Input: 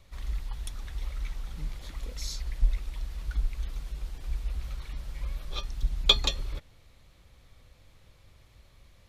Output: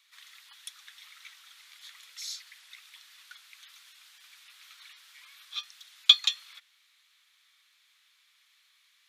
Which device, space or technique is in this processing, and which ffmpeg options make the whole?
headphones lying on a table: -af "highpass=f=1.4k:w=0.5412,highpass=f=1.4k:w=1.3066,equalizer=f=3.5k:t=o:w=0.39:g=4"

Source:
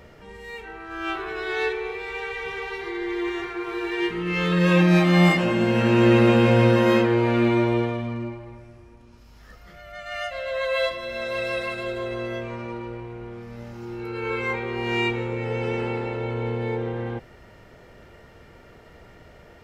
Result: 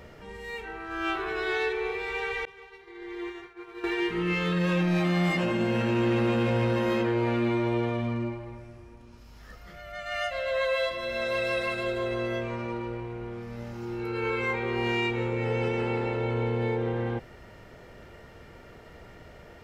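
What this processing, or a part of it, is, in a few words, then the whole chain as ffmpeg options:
soft clipper into limiter: -filter_complex "[0:a]asoftclip=type=tanh:threshold=-11.5dB,alimiter=limit=-19.5dB:level=0:latency=1:release=151,asettb=1/sr,asplit=3[a][b][c];[a]atrim=end=2.454[d];[b]atrim=start=2.45:end=3.84,asetpts=PTS-STARTPTS,afade=t=in:d=0.004:c=qsin,afade=t=out:st=1.386:d=0.004:c=qsin,agate=range=-33dB:threshold=-20dB:ratio=3:detection=peak[e];[c]atrim=start=3.836[f];[d][e]acrossfade=d=0.004:c1=hsin:c2=qsin[g];[g][f]acrossfade=d=0.004:c1=qsin:c2=hsin"

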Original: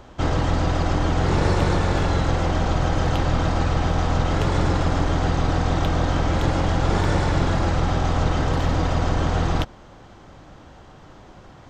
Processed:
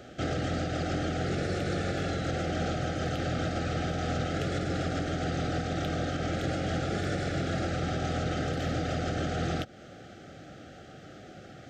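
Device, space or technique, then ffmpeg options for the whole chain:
PA system with an anti-feedback notch: -af "highpass=110,asuperstop=centerf=980:order=8:qfactor=2.2,alimiter=limit=-22dB:level=0:latency=1:release=200"

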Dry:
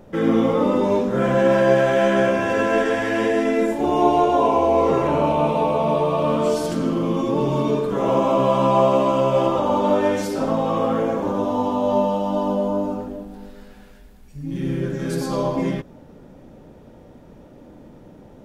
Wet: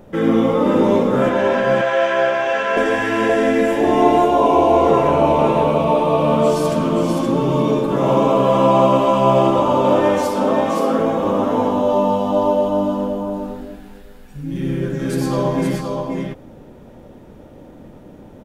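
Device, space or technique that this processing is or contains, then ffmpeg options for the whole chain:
exciter from parts: -filter_complex "[0:a]asplit=2[a][b];[b]highpass=3.1k,asoftclip=type=tanh:threshold=-36dB,highpass=f=3.7k:w=0.5412,highpass=f=3.7k:w=1.3066,volume=-11.5dB[c];[a][c]amix=inputs=2:normalize=0,asettb=1/sr,asplit=3[d][e][f];[d]atrim=end=1.294[g];[e]atrim=start=1.29:end=2.77,asetpts=PTS-STARTPTS,afade=t=in:d=0.004:c=qsin,afade=t=out:st=1.476:d=0.004:c=qsin,acrossover=split=550 6300:gain=0.141 1 0.126[h][i][j];[h][i][j]amix=inputs=3:normalize=0[k];[f]atrim=start=2.766[l];[g][k]acrossfade=d=0.004:c1=hsin:c2=qsin[m];[m][l]acrossfade=d=0.004:c1=qsin:c2=hsin,asettb=1/sr,asplit=3[n][o][p];[n]atrim=end=10.184[q];[o]atrim=start=10.18:end=10.99,asetpts=PTS-STARTPTS,afade=t=in:d=0.004:c=qsin,afade=t=out:st=0.806:d=0.004:c=qsin,highpass=f=200:w=0.5412,highpass=f=200:w=1.3066[r];[p]atrim=start=10.986[s];[q][r]acrossfade=d=0.004:c1=hsin:c2=qsin[t];[t][s]acrossfade=d=0.004:c1=qsin:c2=hsin,aecho=1:1:524:0.631,volume=2.5dB"

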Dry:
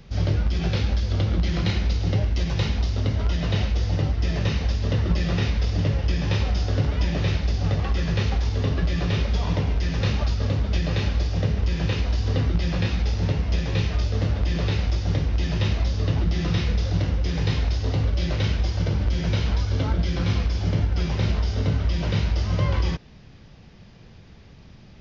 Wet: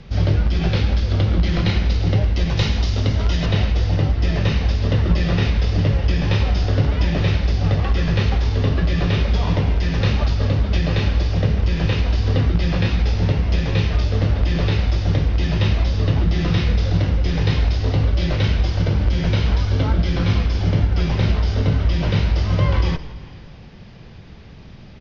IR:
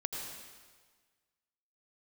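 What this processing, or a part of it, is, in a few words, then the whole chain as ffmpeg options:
compressed reverb return: -filter_complex "[0:a]lowpass=5.1k,asettb=1/sr,asplit=3[a][b][c];[a]atrim=end=2.574[d];[b]atrim=start=2.57:end=3.46,asetpts=PTS-STARTPTS,afade=t=in:d=0.004:c=qsin,afade=t=out:st=0.886:d=0.004:c=qsin,aemphasis=mode=production:type=50fm[e];[c]atrim=start=3.456[f];[d][e]acrossfade=d=0.004:c1=hsin:c2=qsin[g];[g][f]acrossfade=d=0.004:c1=qsin:c2=hsin,asplit=5[h][i][j][k][l];[i]adelay=168,afreqshift=-54,volume=-17.5dB[m];[j]adelay=336,afreqshift=-108,volume=-23.9dB[n];[k]adelay=504,afreqshift=-162,volume=-30.3dB[o];[l]adelay=672,afreqshift=-216,volume=-36.6dB[p];[h][m][n][o][p]amix=inputs=5:normalize=0,asplit=2[q][r];[1:a]atrim=start_sample=2205[s];[r][s]afir=irnorm=-1:irlink=0,acompressor=threshold=-28dB:ratio=6,volume=-9dB[t];[q][t]amix=inputs=2:normalize=0,volume=4dB"

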